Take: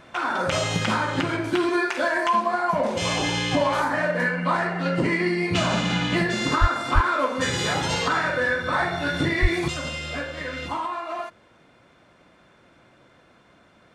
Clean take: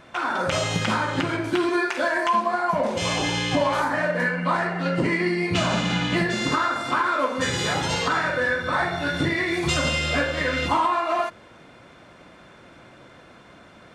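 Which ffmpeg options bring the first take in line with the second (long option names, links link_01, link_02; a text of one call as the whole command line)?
ffmpeg -i in.wav -filter_complex "[0:a]asplit=3[link_01][link_02][link_03];[link_01]afade=type=out:start_time=6.6:duration=0.02[link_04];[link_02]highpass=frequency=140:width=0.5412,highpass=frequency=140:width=1.3066,afade=type=in:start_time=6.6:duration=0.02,afade=type=out:start_time=6.72:duration=0.02[link_05];[link_03]afade=type=in:start_time=6.72:duration=0.02[link_06];[link_04][link_05][link_06]amix=inputs=3:normalize=0,asplit=3[link_07][link_08][link_09];[link_07]afade=type=out:start_time=6.94:duration=0.02[link_10];[link_08]highpass=frequency=140:width=0.5412,highpass=frequency=140:width=1.3066,afade=type=in:start_time=6.94:duration=0.02,afade=type=out:start_time=7.06:duration=0.02[link_11];[link_09]afade=type=in:start_time=7.06:duration=0.02[link_12];[link_10][link_11][link_12]amix=inputs=3:normalize=0,asplit=3[link_13][link_14][link_15];[link_13]afade=type=out:start_time=9.41:duration=0.02[link_16];[link_14]highpass=frequency=140:width=0.5412,highpass=frequency=140:width=1.3066,afade=type=in:start_time=9.41:duration=0.02,afade=type=out:start_time=9.53:duration=0.02[link_17];[link_15]afade=type=in:start_time=9.53:duration=0.02[link_18];[link_16][link_17][link_18]amix=inputs=3:normalize=0,asetnsamples=nb_out_samples=441:pad=0,asendcmd='9.68 volume volume 7.5dB',volume=0dB" out.wav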